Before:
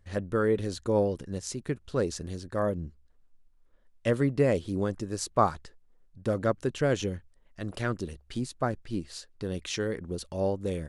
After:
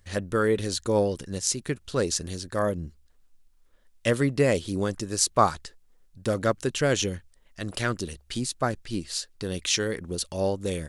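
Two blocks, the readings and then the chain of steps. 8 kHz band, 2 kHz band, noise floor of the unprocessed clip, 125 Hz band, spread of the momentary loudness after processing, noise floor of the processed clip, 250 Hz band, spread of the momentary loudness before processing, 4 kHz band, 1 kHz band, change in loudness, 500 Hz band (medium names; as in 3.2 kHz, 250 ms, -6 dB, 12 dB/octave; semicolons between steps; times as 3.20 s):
+12.0 dB, +6.0 dB, -62 dBFS, +1.5 dB, 10 LU, -60 dBFS, +1.5 dB, 11 LU, +10.5 dB, +3.5 dB, +3.5 dB, +2.0 dB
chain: treble shelf 2.2 kHz +11.5 dB; trim +1.5 dB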